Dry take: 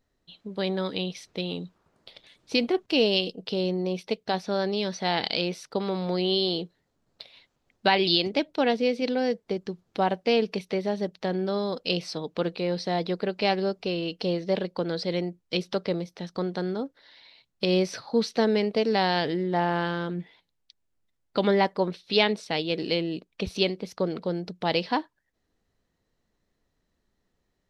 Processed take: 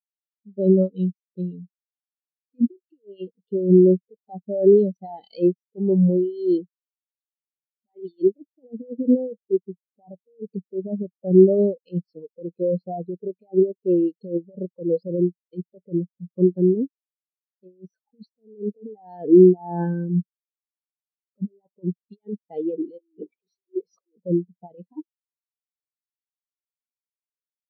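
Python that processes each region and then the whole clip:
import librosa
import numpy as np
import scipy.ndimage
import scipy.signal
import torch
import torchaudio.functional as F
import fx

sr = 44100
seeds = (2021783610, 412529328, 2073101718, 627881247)

y = fx.chain(x, sr, fx.highpass(hz=380.0, slope=12),
    fx.power_curve(exponent=0.35), at=(22.99, 24.16))
y = fx.notch(y, sr, hz=1400.0, q=14.0)
y = fx.over_compress(y, sr, threshold_db=-27.0, ratio=-0.5)
y = fx.spectral_expand(y, sr, expansion=4.0)
y = F.gain(torch.from_numpy(y), 4.0).numpy()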